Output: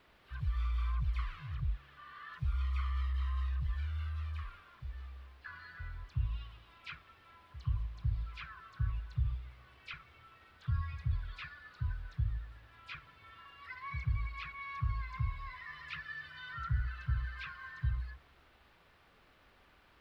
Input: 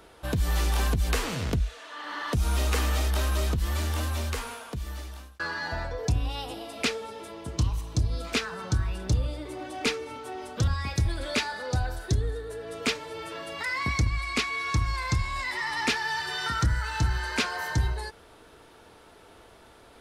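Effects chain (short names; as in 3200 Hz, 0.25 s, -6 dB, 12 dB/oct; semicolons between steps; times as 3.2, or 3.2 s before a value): FFT band-reject 170–1000 Hz; envelope flanger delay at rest 3.5 ms, full sweep at -16.5 dBFS; dispersion lows, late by 76 ms, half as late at 2200 Hz; in parallel at -9 dB: requantised 6-bit, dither triangular; on the sum: air absorption 410 m; resonator 69 Hz, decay 1.7 s, harmonics all, mix 30%; gain -7.5 dB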